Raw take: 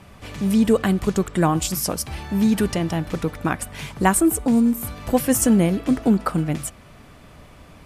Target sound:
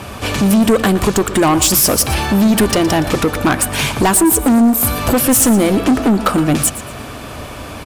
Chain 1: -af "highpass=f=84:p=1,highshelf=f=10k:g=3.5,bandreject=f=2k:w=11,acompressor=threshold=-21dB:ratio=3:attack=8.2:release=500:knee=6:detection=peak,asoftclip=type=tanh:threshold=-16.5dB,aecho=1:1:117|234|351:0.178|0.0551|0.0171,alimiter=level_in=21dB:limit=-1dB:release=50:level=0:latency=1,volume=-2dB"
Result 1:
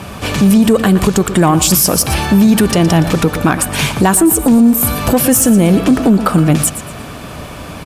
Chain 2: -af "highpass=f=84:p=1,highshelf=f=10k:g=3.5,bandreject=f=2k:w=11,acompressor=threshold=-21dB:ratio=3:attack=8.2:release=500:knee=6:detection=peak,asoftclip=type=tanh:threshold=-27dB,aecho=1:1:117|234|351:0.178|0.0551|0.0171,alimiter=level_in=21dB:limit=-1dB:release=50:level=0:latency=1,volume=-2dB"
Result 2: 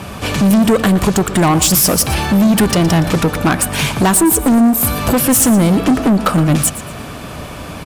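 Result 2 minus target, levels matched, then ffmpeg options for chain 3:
125 Hz band +3.5 dB
-af "highpass=f=84:p=1,highshelf=f=10k:g=3.5,bandreject=f=2k:w=11,acompressor=threshold=-21dB:ratio=3:attack=8.2:release=500:knee=6:detection=peak,equalizer=f=170:t=o:w=0.28:g=-12.5,asoftclip=type=tanh:threshold=-27dB,aecho=1:1:117|234|351:0.178|0.0551|0.0171,alimiter=level_in=21dB:limit=-1dB:release=50:level=0:latency=1,volume=-2dB"

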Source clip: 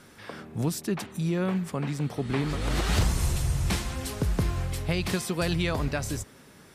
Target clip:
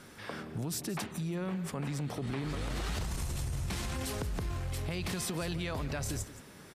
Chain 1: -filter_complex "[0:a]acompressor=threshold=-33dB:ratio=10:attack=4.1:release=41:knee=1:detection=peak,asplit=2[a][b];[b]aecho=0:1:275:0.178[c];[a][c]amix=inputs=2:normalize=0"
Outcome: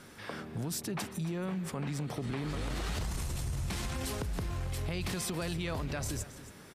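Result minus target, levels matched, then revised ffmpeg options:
echo 0.101 s late
-filter_complex "[0:a]acompressor=threshold=-33dB:ratio=10:attack=4.1:release=41:knee=1:detection=peak,asplit=2[a][b];[b]aecho=0:1:174:0.178[c];[a][c]amix=inputs=2:normalize=0"

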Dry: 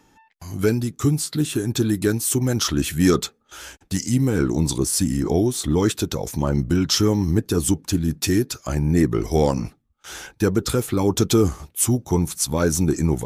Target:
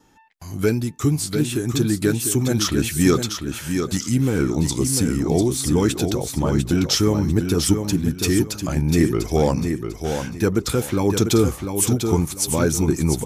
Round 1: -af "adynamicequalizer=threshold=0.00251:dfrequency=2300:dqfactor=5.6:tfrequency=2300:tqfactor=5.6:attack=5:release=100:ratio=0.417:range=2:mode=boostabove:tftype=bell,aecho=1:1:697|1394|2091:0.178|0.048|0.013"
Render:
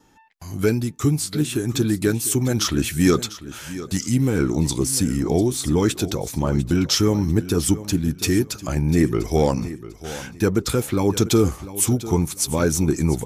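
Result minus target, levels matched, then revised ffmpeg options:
echo-to-direct -8.5 dB
-af "adynamicequalizer=threshold=0.00251:dfrequency=2300:dqfactor=5.6:tfrequency=2300:tqfactor=5.6:attack=5:release=100:ratio=0.417:range=2:mode=boostabove:tftype=bell,aecho=1:1:697|1394|2091:0.473|0.128|0.0345"

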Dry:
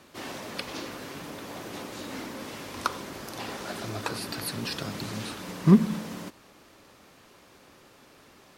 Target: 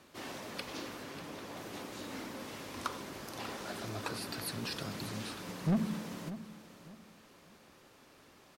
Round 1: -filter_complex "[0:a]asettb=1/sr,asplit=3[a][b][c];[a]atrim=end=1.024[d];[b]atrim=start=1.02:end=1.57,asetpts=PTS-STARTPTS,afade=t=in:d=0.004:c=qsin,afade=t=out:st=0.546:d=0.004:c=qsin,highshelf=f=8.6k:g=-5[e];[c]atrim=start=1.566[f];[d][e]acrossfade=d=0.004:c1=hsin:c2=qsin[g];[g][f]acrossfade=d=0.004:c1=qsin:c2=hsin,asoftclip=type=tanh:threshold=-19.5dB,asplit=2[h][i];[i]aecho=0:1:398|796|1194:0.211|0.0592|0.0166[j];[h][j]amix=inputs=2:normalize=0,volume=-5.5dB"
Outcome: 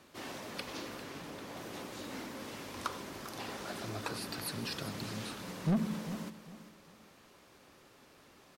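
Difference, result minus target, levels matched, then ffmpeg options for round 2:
echo 0.194 s early
-filter_complex "[0:a]asettb=1/sr,asplit=3[a][b][c];[a]atrim=end=1.024[d];[b]atrim=start=1.02:end=1.57,asetpts=PTS-STARTPTS,afade=t=in:d=0.004:c=qsin,afade=t=out:st=0.546:d=0.004:c=qsin,highshelf=f=8.6k:g=-5[e];[c]atrim=start=1.566[f];[d][e]acrossfade=d=0.004:c1=hsin:c2=qsin[g];[g][f]acrossfade=d=0.004:c1=qsin:c2=hsin,asoftclip=type=tanh:threshold=-19.5dB,asplit=2[h][i];[i]aecho=0:1:592|1184|1776:0.211|0.0592|0.0166[j];[h][j]amix=inputs=2:normalize=0,volume=-5.5dB"

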